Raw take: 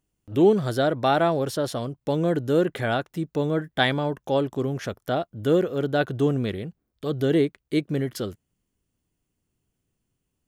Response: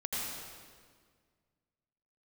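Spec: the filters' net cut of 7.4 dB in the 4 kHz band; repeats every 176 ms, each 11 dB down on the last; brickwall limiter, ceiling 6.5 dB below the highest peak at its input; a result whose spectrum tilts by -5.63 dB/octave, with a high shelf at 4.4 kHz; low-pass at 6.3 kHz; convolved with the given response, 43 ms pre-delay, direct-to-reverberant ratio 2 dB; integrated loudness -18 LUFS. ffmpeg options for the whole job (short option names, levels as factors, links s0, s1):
-filter_complex "[0:a]lowpass=6300,equalizer=f=4000:t=o:g=-4.5,highshelf=f=4400:g=-9,alimiter=limit=0.178:level=0:latency=1,aecho=1:1:176|352|528:0.282|0.0789|0.0221,asplit=2[s0][s1];[1:a]atrim=start_sample=2205,adelay=43[s2];[s1][s2]afir=irnorm=-1:irlink=0,volume=0.473[s3];[s0][s3]amix=inputs=2:normalize=0,volume=2"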